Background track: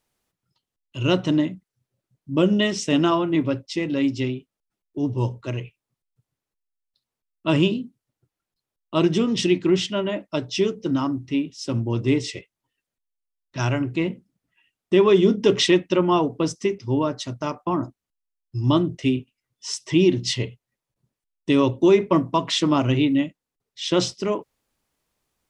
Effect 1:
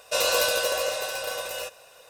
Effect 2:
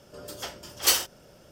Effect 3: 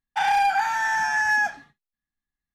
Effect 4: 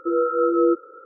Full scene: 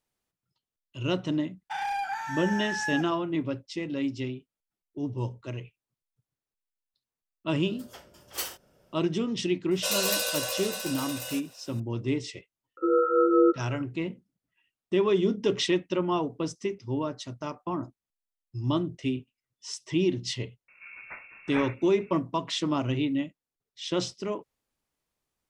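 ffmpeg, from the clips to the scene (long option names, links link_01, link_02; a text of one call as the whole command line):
ffmpeg -i bed.wav -i cue0.wav -i cue1.wav -i cue2.wav -i cue3.wav -filter_complex "[2:a]asplit=2[link_01][link_02];[0:a]volume=-8dB[link_03];[link_01]equalizer=frequency=5200:width=0.74:gain=-5[link_04];[1:a]highshelf=frequency=2600:gain=9[link_05];[link_02]lowpass=frequency=2400:width_type=q:width=0.5098,lowpass=frequency=2400:width_type=q:width=0.6013,lowpass=frequency=2400:width_type=q:width=0.9,lowpass=frequency=2400:width_type=q:width=2.563,afreqshift=-2800[link_06];[3:a]atrim=end=2.54,asetpts=PTS-STARTPTS,volume=-10.5dB,afade=type=in:duration=0.004:curve=hsin,afade=type=out:start_time=2.536:duration=0.004:curve=hsin,adelay=1540[link_07];[link_04]atrim=end=1.51,asetpts=PTS-STARTPTS,volume=-9.5dB,afade=type=in:duration=0.004:curve=hsin,afade=type=out:start_time=1.506:duration=0.004:curve=hsin,adelay=7510[link_08];[link_05]atrim=end=2.09,asetpts=PTS-STARTPTS,volume=-9dB,afade=type=in:duration=0.004:curve=hsin,afade=type=out:start_time=2.086:duration=0.004:curve=hsin,adelay=9710[link_09];[4:a]atrim=end=1.05,asetpts=PTS-STARTPTS,volume=-2dB,afade=type=in:duration=0.004:curve=hsin,afade=type=out:start_time=1.046:duration=0.004:curve=hsin,adelay=12770[link_10];[link_06]atrim=end=1.51,asetpts=PTS-STARTPTS,volume=-3dB,afade=type=in:duration=0.004:curve=hsin,afade=type=out:start_time=1.506:duration=0.004:curve=hsin,adelay=911988S[link_11];[link_03][link_07][link_08][link_09][link_10][link_11]amix=inputs=6:normalize=0" out.wav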